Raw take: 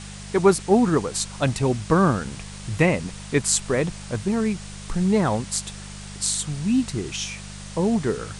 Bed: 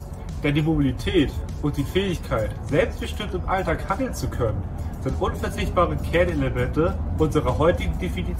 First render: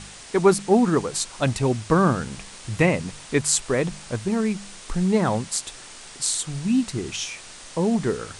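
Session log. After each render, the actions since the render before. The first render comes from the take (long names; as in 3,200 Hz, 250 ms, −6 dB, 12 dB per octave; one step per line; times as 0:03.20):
hum removal 50 Hz, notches 4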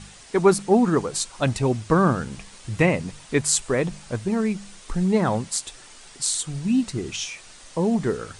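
broadband denoise 6 dB, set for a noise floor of −42 dBFS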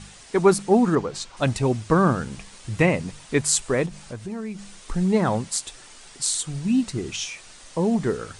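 0:00.95–0:01.37: high-frequency loss of the air 100 metres
0:03.86–0:04.59: downward compressor 2 to 1, threshold −35 dBFS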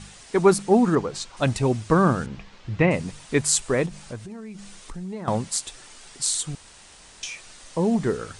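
0:02.26–0:02.91: high-frequency loss of the air 190 metres
0:04.19–0:05.28: downward compressor 2.5 to 1, threshold −37 dBFS
0:06.55–0:07.23: fill with room tone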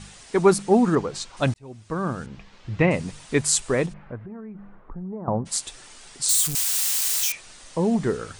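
0:01.54–0:02.82: fade in
0:03.92–0:05.45: low-pass filter 2,100 Hz → 1,000 Hz 24 dB per octave
0:06.29–0:07.32: spike at every zero crossing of −17 dBFS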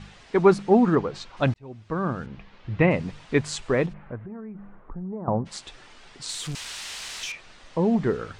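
low-pass filter 3,400 Hz 12 dB per octave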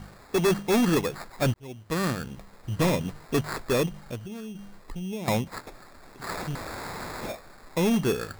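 sample-rate reduction 3,000 Hz, jitter 0%
hard clipping −18.5 dBFS, distortion −8 dB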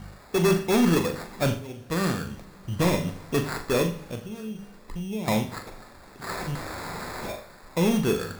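flutter between parallel walls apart 7.1 metres, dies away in 0.31 s
coupled-rooms reverb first 0.49 s, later 3.7 s, from −20 dB, DRR 9.5 dB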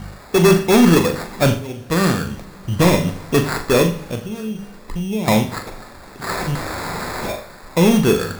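level +9 dB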